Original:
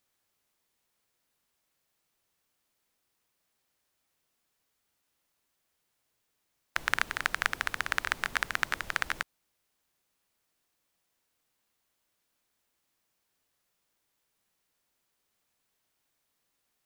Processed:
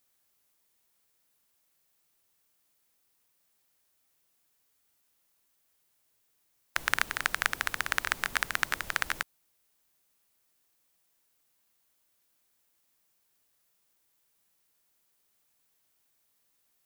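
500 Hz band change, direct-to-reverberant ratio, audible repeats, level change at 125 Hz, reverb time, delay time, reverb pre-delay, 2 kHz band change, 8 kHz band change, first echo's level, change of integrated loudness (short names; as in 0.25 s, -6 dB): 0.0 dB, none, none, 0.0 dB, none, none, none, +0.5 dB, +4.5 dB, none, +1.0 dB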